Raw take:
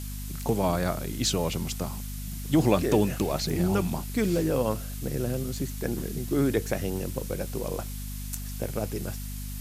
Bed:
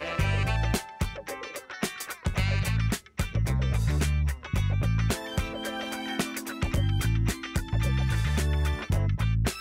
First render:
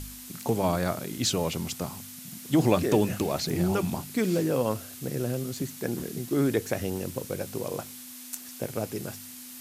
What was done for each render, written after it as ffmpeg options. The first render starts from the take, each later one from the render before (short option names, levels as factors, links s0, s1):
-af "bandreject=f=50:t=h:w=4,bandreject=f=100:t=h:w=4,bandreject=f=150:t=h:w=4,bandreject=f=200:t=h:w=4"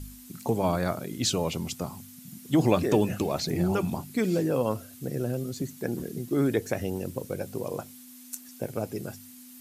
-af "afftdn=nr=9:nf=-44"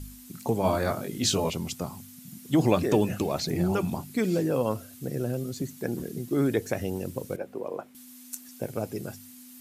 -filter_complex "[0:a]asettb=1/sr,asplit=3[s0][s1][s2];[s0]atrim=end=0.634[s3];[s1]atrim=start=0.63:end=1.5,asetpts=PTS-STARTPTS,afade=t=in:d=0.004:c=qsin,afade=t=out:st=0.866:d=0.004:c=qsin,asplit=2[s4][s5];[s5]adelay=20,volume=0.708[s6];[s4][s6]amix=inputs=2:normalize=0,atrim=end_sample=38367[s7];[s2]atrim=start=1.496[s8];[s3][s7]acrossfade=d=0.004:c1=hsin:c2=qsin[s9];[s9][s8]acrossfade=d=0.004:c1=qsin:c2=hsin,asettb=1/sr,asplit=3[s10][s11][s12];[s10]atrim=end=7.364[s13];[s11]atrim=start=7.36:end=7.95,asetpts=PTS-STARTPTS,afade=t=in:d=0.004:c=qsin,afade=t=out:st=0.586:d=0.004:c=qsin,acrossover=split=230 2600:gain=0.112 1 0.141[s14][s15][s16];[s14][s15][s16]amix=inputs=3:normalize=0[s17];[s12]atrim=start=7.946[s18];[s13][s17]acrossfade=d=0.004:c1=hsin:c2=qsin[s19];[s19][s18]acrossfade=d=0.004:c1=qsin:c2=hsin"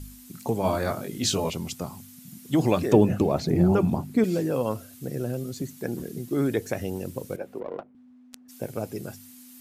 -filter_complex "[0:a]asettb=1/sr,asplit=3[s0][s1][s2];[s0]atrim=end=2.934[s3];[s1]atrim=start=2.93:end=4.24,asetpts=PTS-STARTPTS,afade=t=in:d=0.004:c=qsin,afade=t=out:st=1.306:d=0.004:c=qsin,tiltshelf=f=1500:g=6.5[s4];[s2]atrim=start=4.236[s5];[s3][s4]acrossfade=d=0.004:c1=hsin:c2=qsin[s6];[s6][s5]acrossfade=d=0.004:c1=qsin:c2=hsin,asplit=3[s7][s8][s9];[s7]afade=t=out:st=7.59:d=0.02[s10];[s8]adynamicsmooth=sensitivity=3.5:basefreq=760,afade=t=in:st=7.59:d=0.02,afade=t=out:st=8.48:d=0.02[s11];[s9]afade=t=in:st=8.48:d=0.02[s12];[s10][s11][s12]amix=inputs=3:normalize=0"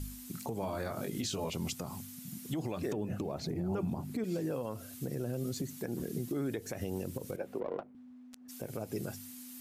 -af "acompressor=threshold=0.0355:ratio=6,alimiter=level_in=1.26:limit=0.0631:level=0:latency=1:release=105,volume=0.794"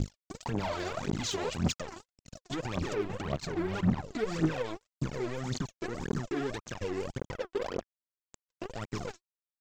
-af "aresample=16000,acrusher=bits=5:mix=0:aa=0.5,aresample=44100,aphaser=in_gain=1:out_gain=1:delay=3.1:decay=0.74:speed=1.8:type=triangular"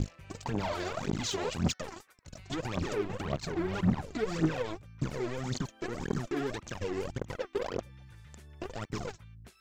-filter_complex "[1:a]volume=0.0501[s0];[0:a][s0]amix=inputs=2:normalize=0"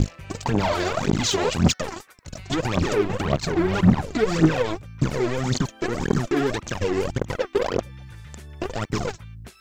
-af "volume=3.55"